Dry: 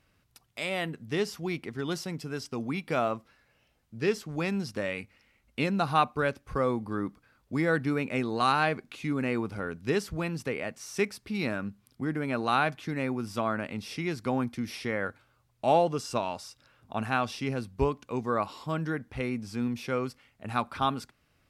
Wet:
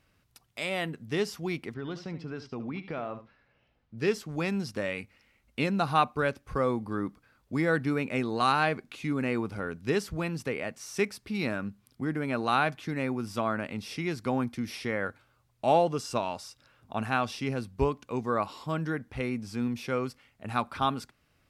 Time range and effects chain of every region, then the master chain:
1.74–3.98 air absorption 210 m + compressor 4:1, threshold -32 dBFS + echo 74 ms -12 dB
whole clip: dry

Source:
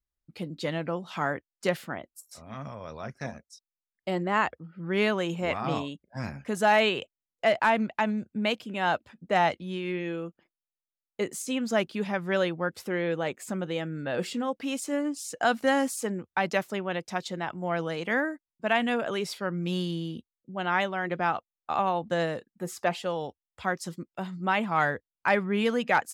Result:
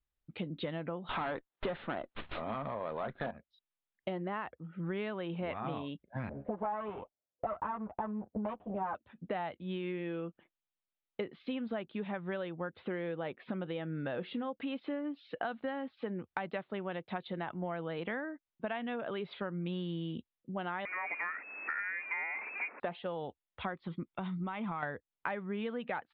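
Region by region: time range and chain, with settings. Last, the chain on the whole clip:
1.09–3.31 bell 2500 Hz -6 dB 1.7 oct + overdrive pedal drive 23 dB, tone 4500 Hz, clips at -12.5 dBFS + running maximum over 5 samples
6.29–8.95 minimum comb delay 9.7 ms + HPF 56 Hz + envelope low-pass 530–1100 Hz up, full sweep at -23 dBFS
20.85–22.8 zero-crossing step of -32 dBFS + inverted band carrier 2600 Hz + HPF 260 Hz 24 dB/oct
23.74–24.83 compressor, threshold -31 dBFS + comb 0.9 ms, depth 32%
whole clip: steep low-pass 3800 Hz 72 dB/oct; dynamic EQ 2700 Hz, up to -4 dB, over -43 dBFS, Q 1.1; compressor 10:1, threshold -35 dBFS; gain +1 dB

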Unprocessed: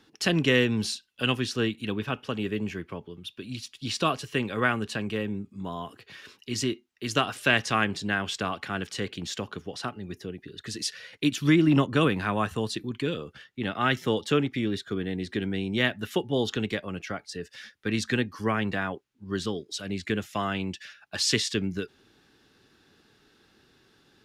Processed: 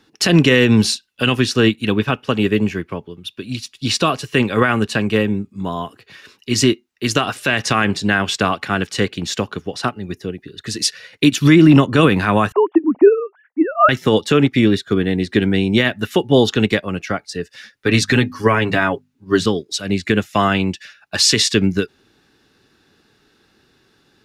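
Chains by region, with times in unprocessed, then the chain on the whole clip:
12.52–13.89 sine-wave speech + synth low-pass 900 Hz, resonance Q 1.9
17.72–19.46 notches 50/100/150/200/250 Hz + comb 7.2 ms, depth 51%
whole clip: notch 3200 Hz, Q 19; maximiser +17 dB; upward expander 1.5:1, over -31 dBFS

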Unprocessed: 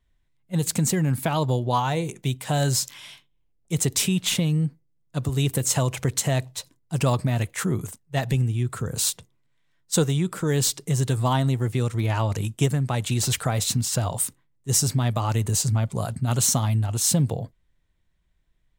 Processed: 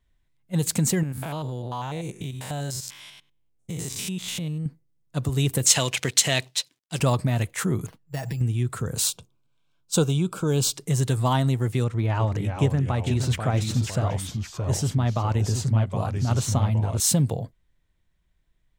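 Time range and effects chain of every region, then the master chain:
1.03–4.66 stepped spectrum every 0.1 s + compressor 4:1, threshold -28 dBFS
5.66–7 G.711 law mismatch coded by A + weighting filter D
7.86–8.41 compressor, threshold -28 dBFS + comb 6.3 ms, depth 52% + careless resampling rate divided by 6×, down filtered, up hold
9.07–10.76 Butterworth band-stop 1900 Hz, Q 2.7 + bell 12000 Hz -4 dB 1 oct
11.84–17 LPF 2000 Hz 6 dB/oct + echoes that change speed 0.36 s, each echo -2 st, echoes 2, each echo -6 dB
whole clip: dry

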